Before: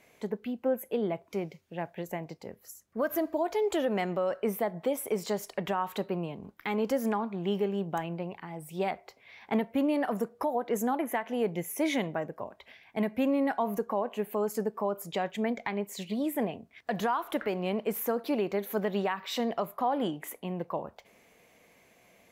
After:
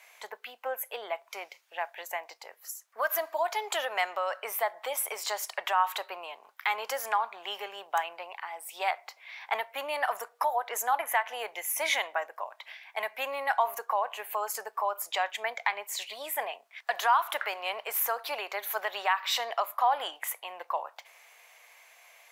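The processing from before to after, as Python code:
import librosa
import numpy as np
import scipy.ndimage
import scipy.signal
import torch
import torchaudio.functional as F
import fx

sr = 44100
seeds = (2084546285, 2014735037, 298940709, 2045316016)

y = scipy.signal.sosfilt(scipy.signal.butter(4, 790.0, 'highpass', fs=sr, output='sos'), x)
y = y * librosa.db_to_amplitude(7.5)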